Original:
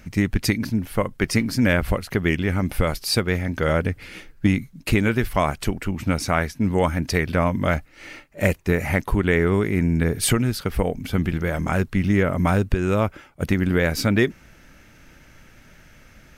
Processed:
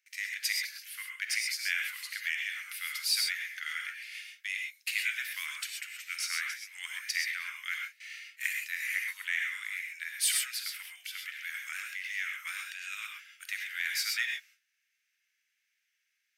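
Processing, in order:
noise gate with hold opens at −35 dBFS
Butterworth high-pass 1,800 Hz 36 dB per octave
in parallel at −6 dB: soft clipping −23.5 dBFS, distortion −9 dB
on the sum: reverb whose tail is shaped and stops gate 150 ms rising, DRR 1 dB
level −7.5 dB

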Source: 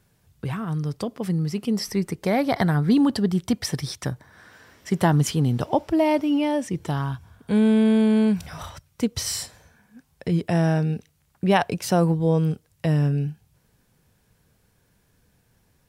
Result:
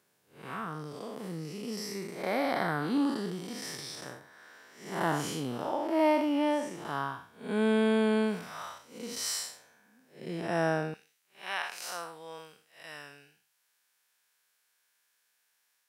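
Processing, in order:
spectrum smeared in time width 174 ms
high-pass filter 340 Hz 12 dB per octave, from 0:10.94 1,400 Hz
dynamic equaliser 1,300 Hz, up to +6 dB, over −49 dBFS, Q 1.5
level −2 dB

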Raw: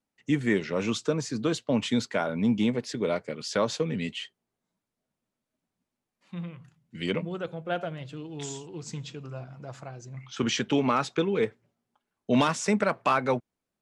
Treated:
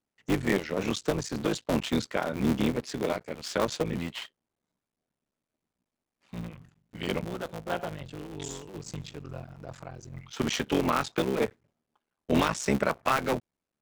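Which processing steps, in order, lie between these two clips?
sub-harmonics by changed cycles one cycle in 3, muted

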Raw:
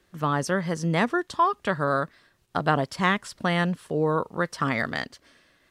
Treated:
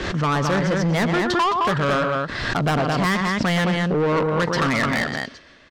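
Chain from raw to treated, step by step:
running median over 5 samples
in parallel at +1 dB: speech leveller
on the sum: low-pass filter 7,100 Hz 24 dB per octave
on a send: loudspeakers that aren't time-aligned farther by 41 metres −12 dB, 74 metres −6 dB
on the sum: soft clipping −19.5 dBFS, distortion −8 dB
background raised ahead of every attack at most 36 dB per second
level +3 dB

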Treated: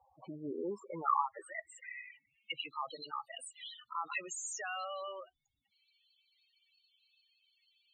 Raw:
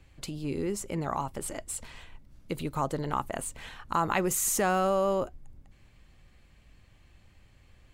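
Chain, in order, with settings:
band-pass filter sweep 860 Hz → 3,800 Hz, 0:00.28–0:03.02
spectral peaks only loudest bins 8
speech leveller within 4 dB 2 s
level +8.5 dB

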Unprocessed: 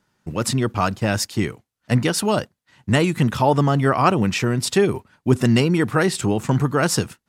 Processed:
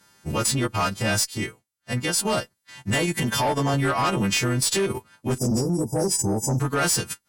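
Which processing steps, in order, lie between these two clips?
every partial snapped to a pitch grid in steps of 2 semitones
0:01.19–0:02.34: duck −9 dB, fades 0.21 s
0:02.94–0:03.74: notch comb filter 1,300 Hz
0:05.38–0:06.60: linear-phase brick-wall band-stop 970–4,700 Hz
tube saturation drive 15 dB, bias 0.2
downward compressor 8 to 1, threshold −27 dBFS, peak gain reduction 10.5 dB
transient designer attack −5 dB, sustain −9 dB
level +7.5 dB

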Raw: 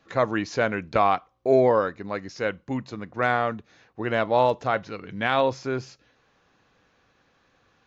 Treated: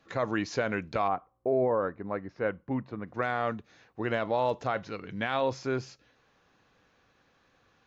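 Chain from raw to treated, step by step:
0:01.07–0:03.06: low-pass filter 1,100 Hz → 1,900 Hz 12 dB per octave
brickwall limiter −15 dBFS, peak gain reduction 7 dB
level −2.5 dB

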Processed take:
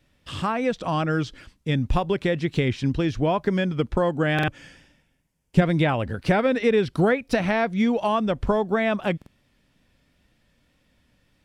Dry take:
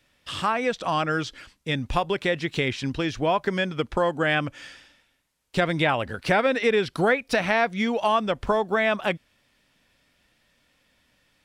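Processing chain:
low-shelf EQ 410 Hz +12 dB
tape wow and flutter 26 cents
0:04.58–0:05.62: thirty-one-band graphic EQ 160 Hz +8 dB, 1,250 Hz −6 dB, 4,000 Hz −9 dB
buffer that repeats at 0:04.34/0:09.17, samples 2,048, times 2
level −4 dB

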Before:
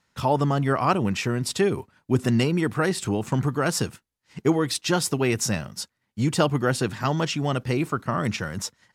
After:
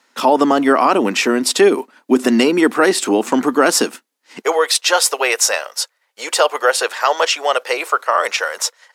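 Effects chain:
elliptic high-pass filter 250 Hz, stop band 80 dB, from 0:04.41 490 Hz
boost into a limiter +14 dB
level −1 dB

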